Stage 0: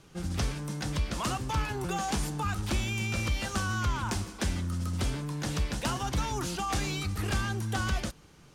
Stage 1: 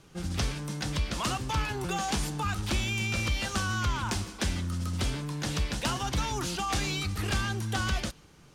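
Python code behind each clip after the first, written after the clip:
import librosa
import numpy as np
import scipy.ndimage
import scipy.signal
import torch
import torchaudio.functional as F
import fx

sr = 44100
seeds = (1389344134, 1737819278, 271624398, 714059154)

y = fx.dynamic_eq(x, sr, hz=3500.0, q=0.72, threshold_db=-51.0, ratio=4.0, max_db=4)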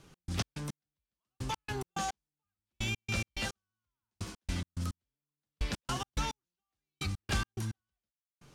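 y = fx.step_gate(x, sr, bpm=107, pattern='x.x.x.....', floor_db=-60.0, edge_ms=4.5)
y = F.gain(torch.from_numpy(y), -2.5).numpy()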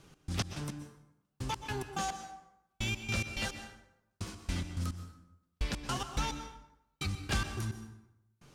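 y = fx.rev_plate(x, sr, seeds[0], rt60_s=0.88, hf_ratio=0.65, predelay_ms=110, drr_db=9.0)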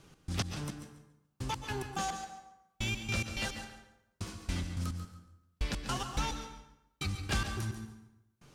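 y = fx.echo_feedback(x, sr, ms=141, feedback_pct=19, wet_db=-11.0)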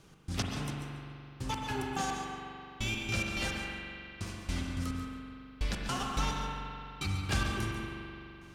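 y = fx.rev_spring(x, sr, rt60_s=2.9, pass_ms=(42,), chirp_ms=65, drr_db=0.5)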